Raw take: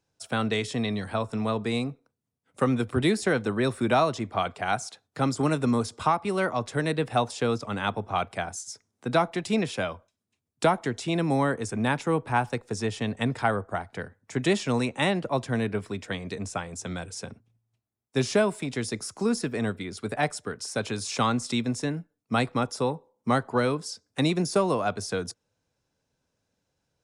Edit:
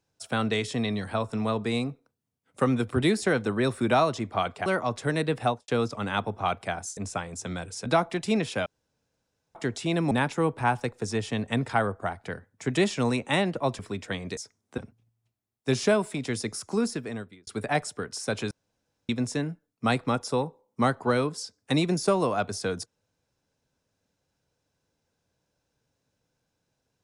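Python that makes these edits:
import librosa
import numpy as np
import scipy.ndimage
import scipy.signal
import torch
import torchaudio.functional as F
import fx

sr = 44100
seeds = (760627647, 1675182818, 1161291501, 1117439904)

y = fx.studio_fade_out(x, sr, start_s=7.13, length_s=0.25)
y = fx.edit(y, sr, fx.cut(start_s=4.66, length_s=1.7),
    fx.swap(start_s=8.67, length_s=0.41, other_s=16.37, other_length_s=0.89),
    fx.room_tone_fill(start_s=9.88, length_s=0.89),
    fx.cut(start_s=11.33, length_s=0.47),
    fx.cut(start_s=15.48, length_s=0.31),
    fx.fade_out_span(start_s=19.23, length_s=0.72),
    fx.room_tone_fill(start_s=20.99, length_s=0.58), tone=tone)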